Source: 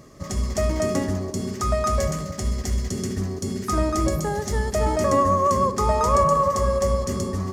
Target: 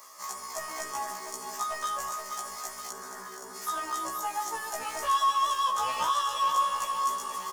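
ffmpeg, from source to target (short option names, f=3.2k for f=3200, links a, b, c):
-filter_complex "[0:a]highpass=f=970:t=q:w=3.7,aemphasis=mode=production:type=75fm,acrossover=split=1400[a][b];[a]asoftclip=type=tanh:threshold=-23.5dB[c];[b]acompressor=threshold=-35dB:ratio=6[d];[c][d]amix=inputs=2:normalize=0,asettb=1/sr,asplit=3[e][f][g];[e]atrim=end=2.914[h];[f]atrim=start=2.91:end=3.55,asetpts=PTS-STARTPTS,afade=t=in:d=0.004:c=qsin,afade=t=out:st=0.636:d=0.004:c=qsin,highshelf=f=2k:t=q:w=3:g=-8.5[i];[g]atrim=start=3.546[j];[h][i]acrossfade=d=0.004:c1=hsin:c2=qsin[k];[k][j]acrossfade=d=0.004:c1=qsin:c2=hsin,asplit=2[l][m];[m]aecho=0:1:474|948|1422|1896|2370|2844|3318:0.355|0.209|0.124|0.0729|0.043|0.0254|0.015[n];[l][n]amix=inputs=2:normalize=0,afftfilt=real='re*1.73*eq(mod(b,3),0)':imag='im*1.73*eq(mod(b,3),0)':win_size=2048:overlap=0.75,volume=-1dB"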